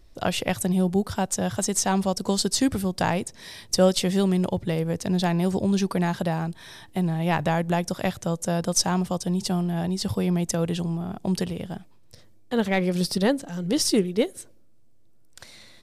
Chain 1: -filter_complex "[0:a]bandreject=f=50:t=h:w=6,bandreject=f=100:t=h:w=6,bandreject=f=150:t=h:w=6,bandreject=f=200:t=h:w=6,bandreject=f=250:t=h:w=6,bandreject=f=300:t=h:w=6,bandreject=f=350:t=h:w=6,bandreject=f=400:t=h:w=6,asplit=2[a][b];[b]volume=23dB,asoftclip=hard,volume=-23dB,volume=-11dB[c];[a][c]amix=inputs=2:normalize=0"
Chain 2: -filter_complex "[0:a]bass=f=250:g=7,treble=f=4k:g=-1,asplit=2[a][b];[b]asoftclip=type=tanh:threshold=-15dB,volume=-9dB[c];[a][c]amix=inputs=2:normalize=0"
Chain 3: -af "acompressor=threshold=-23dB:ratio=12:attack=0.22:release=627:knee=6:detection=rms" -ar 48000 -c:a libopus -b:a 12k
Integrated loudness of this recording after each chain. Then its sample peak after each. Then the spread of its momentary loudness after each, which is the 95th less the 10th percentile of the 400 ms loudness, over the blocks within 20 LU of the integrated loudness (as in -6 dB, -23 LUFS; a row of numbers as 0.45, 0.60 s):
-23.5, -19.5, -34.0 LUFS; -7.0, -3.5, -21.0 dBFS; 7, 6, 7 LU